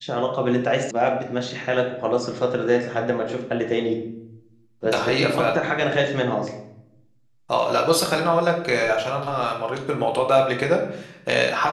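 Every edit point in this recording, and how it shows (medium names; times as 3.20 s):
0.91 s: sound stops dead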